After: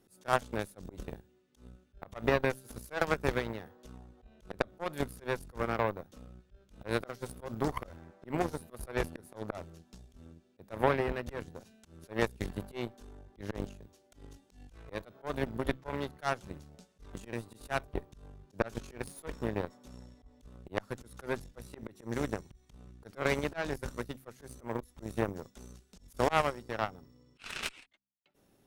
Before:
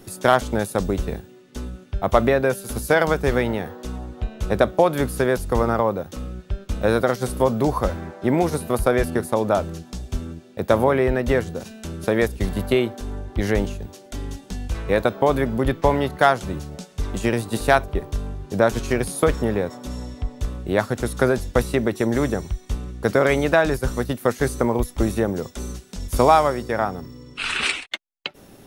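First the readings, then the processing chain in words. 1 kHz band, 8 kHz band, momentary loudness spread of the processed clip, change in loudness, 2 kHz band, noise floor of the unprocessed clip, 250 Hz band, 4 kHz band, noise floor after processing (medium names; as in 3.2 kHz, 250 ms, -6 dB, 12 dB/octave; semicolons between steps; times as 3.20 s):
-14.0 dB, -16.0 dB, 22 LU, -14.0 dB, -12.5 dB, -48 dBFS, -15.5 dB, -13.5 dB, -68 dBFS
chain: de-hum 65.83 Hz, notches 4; slow attack 114 ms; Chebyshev shaper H 3 -29 dB, 4 -16 dB, 7 -20 dB, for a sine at -2.5 dBFS; trim -6.5 dB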